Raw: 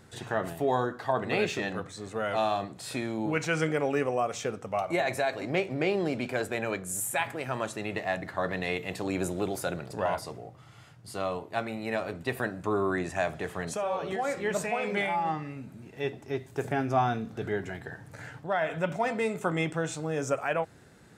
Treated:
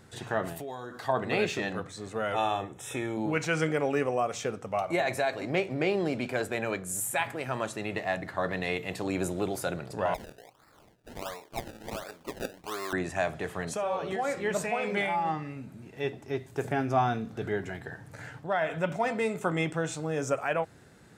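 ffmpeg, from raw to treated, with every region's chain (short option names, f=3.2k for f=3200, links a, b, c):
-filter_complex "[0:a]asettb=1/sr,asplit=3[a][b][c];[a]atrim=end=0.564[d];[b]atrim=start=0.56:end=1.08,asetpts=PTS-STARTPTS,afade=t=in:d=0.004:c=qsin,afade=t=out:st=0.516:d=0.004:c=qsin,highshelf=f=3.1k:g=10,acompressor=threshold=-37dB:ratio=4:attack=3.2:release=140:knee=1:detection=peak[e];[c]atrim=start=1.076[f];[d][e]acrossfade=d=0.004:c1=hsin:c2=qsin[g];[g][f]acrossfade=d=0.004:c1=qsin:c2=hsin,asettb=1/sr,asplit=3[h][i][j];[h]atrim=end=2.324[k];[i]atrim=start=2.32:end=3.17,asetpts=PTS-STARTPTS,afade=t=in:d=0.004:c=qsin,afade=t=out:st=0.846:d=0.004:c=qsin,asuperstop=centerf=4500:order=8:qfactor=2.9,aecho=1:1:2.3:0.46,atrim=end_sample=37485[l];[j]atrim=start=3.166[m];[k][l]acrossfade=d=0.004:c1=hsin:c2=qsin[n];[n][m]acrossfade=d=0.004:c1=qsin:c2=hsin,asettb=1/sr,asplit=3[o][p][q];[o]atrim=end=10.144[r];[p]atrim=start=10.14:end=12.93,asetpts=PTS-STARTPTS,afade=t=in:d=0.004:c=qsin,afade=t=out:st=2.786:d=0.004:c=qsin,highpass=f=1.3k:p=1,acrusher=samples=28:mix=1:aa=0.000001:lfo=1:lforange=28:lforate=1.4[s];[q]atrim=start=12.926[t];[r][s]acrossfade=d=0.004:c1=hsin:c2=qsin[u];[u][t]acrossfade=d=0.004:c1=qsin:c2=hsin"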